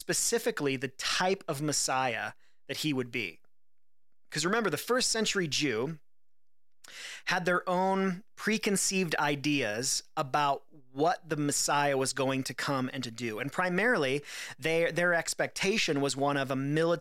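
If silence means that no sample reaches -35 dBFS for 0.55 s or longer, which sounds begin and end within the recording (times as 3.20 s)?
4.32–5.93 s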